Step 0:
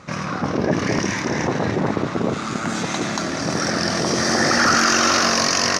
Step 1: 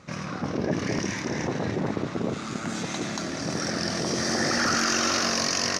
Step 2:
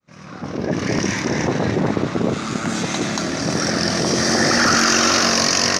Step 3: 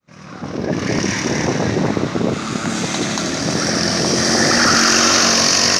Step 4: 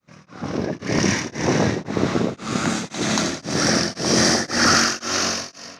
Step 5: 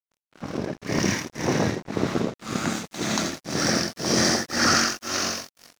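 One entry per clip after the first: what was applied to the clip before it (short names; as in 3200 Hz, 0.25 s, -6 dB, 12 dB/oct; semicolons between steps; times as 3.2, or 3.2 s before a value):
bell 1100 Hz -4 dB 1.5 oct; gain -6 dB
opening faded in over 1.09 s; gain +8.5 dB
thin delay 83 ms, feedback 75%, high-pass 3000 Hz, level -4 dB; gain +1.5 dB
ending faded out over 1.37 s; reverb RT60 1.6 s, pre-delay 32 ms, DRR 11 dB; beating tremolo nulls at 1.9 Hz
crossover distortion -35 dBFS; gain -3 dB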